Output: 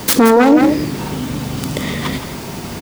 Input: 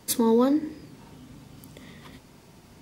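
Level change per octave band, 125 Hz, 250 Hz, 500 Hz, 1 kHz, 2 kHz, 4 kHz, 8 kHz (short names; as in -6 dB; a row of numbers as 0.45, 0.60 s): +21.5, +13.0, +11.5, +16.5, +25.0, +16.0, +11.5 dB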